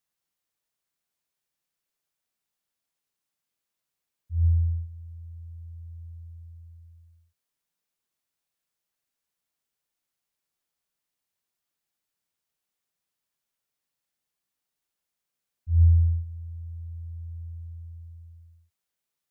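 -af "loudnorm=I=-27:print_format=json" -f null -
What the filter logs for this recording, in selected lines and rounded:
"input_i" : "-28.5",
"input_tp" : "-11.5",
"input_lra" : "18.1",
"input_thresh" : "-41.5",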